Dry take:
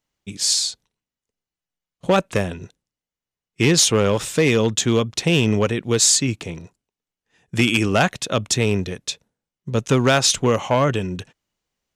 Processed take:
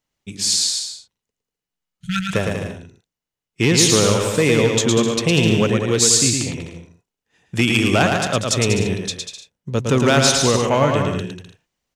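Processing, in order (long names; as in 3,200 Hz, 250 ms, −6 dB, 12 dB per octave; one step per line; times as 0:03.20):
healed spectral selection 0:01.95–0:02.23, 210–1,300 Hz both
bouncing-ball delay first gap 110 ms, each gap 0.75×, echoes 5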